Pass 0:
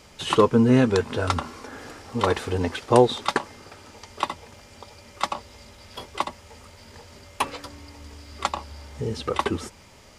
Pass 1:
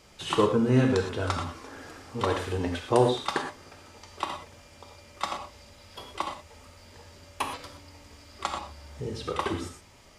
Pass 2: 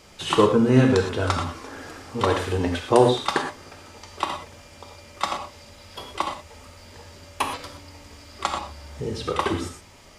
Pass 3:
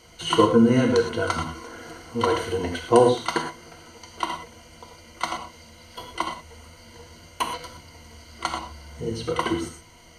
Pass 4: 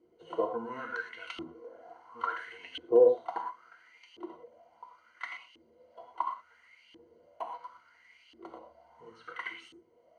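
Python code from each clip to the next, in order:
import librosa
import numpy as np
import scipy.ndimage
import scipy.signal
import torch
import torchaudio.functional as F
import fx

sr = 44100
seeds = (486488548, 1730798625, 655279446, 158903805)

y1 = fx.rev_gated(x, sr, seeds[0], gate_ms=140, shape='flat', drr_db=3.0)
y1 = y1 * 10.0 ** (-6.0 / 20.0)
y2 = fx.hum_notches(y1, sr, base_hz=60, count=2)
y2 = y2 * 10.0 ** (5.5 / 20.0)
y3 = fx.ripple_eq(y2, sr, per_octave=1.9, db=14)
y3 = y3 * 10.0 ** (-3.0 / 20.0)
y4 = fx.filter_lfo_bandpass(y3, sr, shape='saw_up', hz=0.72, low_hz=320.0, high_hz=3000.0, q=6.5)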